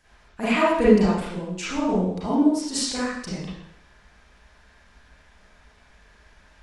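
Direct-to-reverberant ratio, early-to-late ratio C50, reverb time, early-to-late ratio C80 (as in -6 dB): -10.0 dB, -2.0 dB, 0.75 s, 3.5 dB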